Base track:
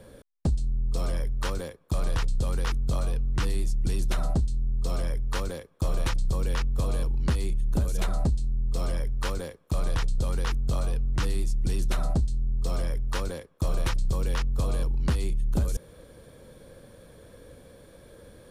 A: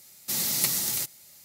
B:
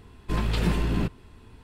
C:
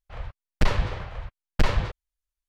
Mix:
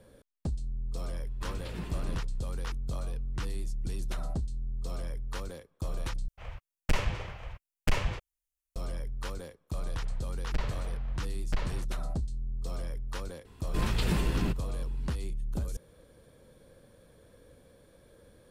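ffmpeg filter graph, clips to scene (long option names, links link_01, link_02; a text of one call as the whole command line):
ffmpeg -i bed.wav -i cue0.wav -i cue1.wav -i cue2.wav -filter_complex "[2:a]asplit=2[link_01][link_02];[3:a]asplit=2[link_03][link_04];[0:a]volume=-8dB[link_05];[link_03]aexciter=amount=1.5:drive=5.1:freq=2200[link_06];[link_02]highshelf=frequency=4900:gain=7[link_07];[link_05]asplit=2[link_08][link_09];[link_08]atrim=end=6.284[link_10];[link_06]atrim=end=2.48,asetpts=PTS-STARTPTS,volume=-6.5dB[link_11];[link_09]atrim=start=8.756[link_12];[link_01]atrim=end=1.63,asetpts=PTS-STARTPTS,volume=-14dB,afade=type=in:duration=0.004:curve=hsin,afade=type=out:start_time=1.626:duration=0.004:curve=hsin,adelay=1120[link_13];[link_04]atrim=end=2.48,asetpts=PTS-STARTPTS,volume=-12.5dB,afade=type=in:duration=0.004:curve=hsin,afade=type=out:start_time=2.476:duration=0.004:curve=hsin,adelay=9930[link_14];[link_07]atrim=end=1.63,asetpts=PTS-STARTPTS,volume=-4.5dB,afade=type=in:duration=0.004:curve=hsin,afade=type=out:start_time=1.626:duration=0.004:curve=hsin,adelay=13450[link_15];[link_10][link_11]acrossfade=duration=0.004:curve1=hsin:curve2=hsin[link_16];[link_16][link_12]acrossfade=duration=0.004:curve1=hsin:curve2=hsin[link_17];[link_17][link_13][link_14][link_15]amix=inputs=4:normalize=0" out.wav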